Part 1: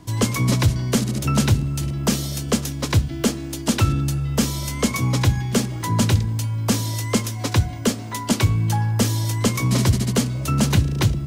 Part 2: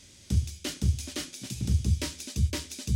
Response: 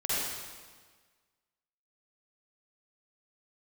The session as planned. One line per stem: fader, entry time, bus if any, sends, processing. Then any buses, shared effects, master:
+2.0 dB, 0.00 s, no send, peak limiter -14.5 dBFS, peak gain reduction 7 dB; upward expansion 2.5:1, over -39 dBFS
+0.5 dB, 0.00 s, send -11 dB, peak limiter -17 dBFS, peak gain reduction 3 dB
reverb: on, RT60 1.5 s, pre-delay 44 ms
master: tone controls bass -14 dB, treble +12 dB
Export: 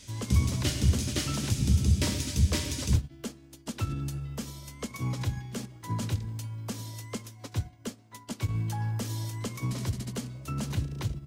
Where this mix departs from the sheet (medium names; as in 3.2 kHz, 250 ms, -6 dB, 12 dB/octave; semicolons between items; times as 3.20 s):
stem 1 +2.0 dB -> -5.0 dB; master: missing tone controls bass -14 dB, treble +12 dB